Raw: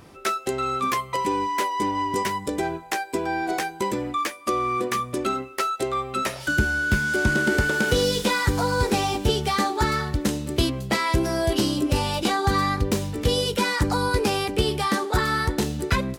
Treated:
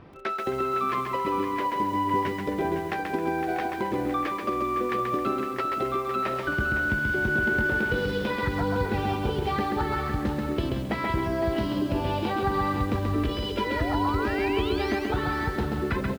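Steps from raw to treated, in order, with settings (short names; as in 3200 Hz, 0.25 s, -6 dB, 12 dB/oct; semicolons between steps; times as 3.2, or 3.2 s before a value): 12.94–15.11 comb 3 ms, depth 87%; compressor 12:1, threshold -23 dBFS, peak gain reduction 10.5 dB; 13.56–14.96 painted sound rise 390–6600 Hz -34 dBFS; air absorption 340 m; echo 0.509 s -9.5 dB; lo-fi delay 0.133 s, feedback 35%, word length 8-bit, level -3.5 dB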